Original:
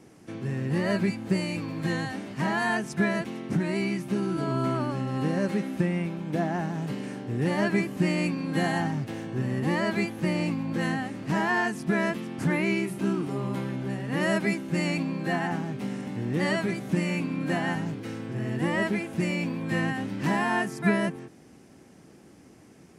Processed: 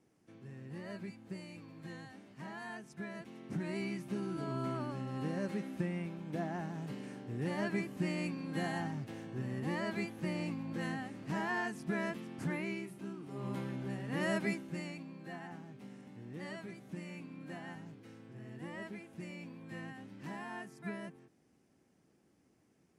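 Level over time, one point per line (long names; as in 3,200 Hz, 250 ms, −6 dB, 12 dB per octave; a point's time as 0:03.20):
0:03.07 −19 dB
0:03.68 −10.5 dB
0:12.41 −10.5 dB
0:13.20 −18.5 dB
0:13.48 −8.5 dB
0:14.50 −8.5 dB
0:14.98 −18.5 dB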